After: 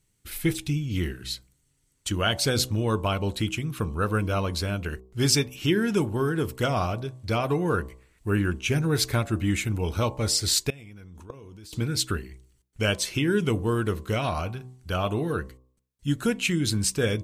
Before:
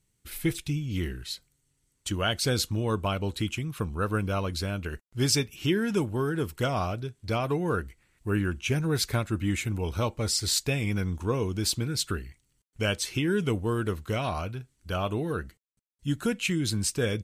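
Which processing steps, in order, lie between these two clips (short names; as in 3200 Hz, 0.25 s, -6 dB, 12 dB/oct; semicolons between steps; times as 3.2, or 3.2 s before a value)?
de-hum 63.54 Hz, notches 18; 10.7–11.73 level quantiser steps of 24 dB; gain +3 dB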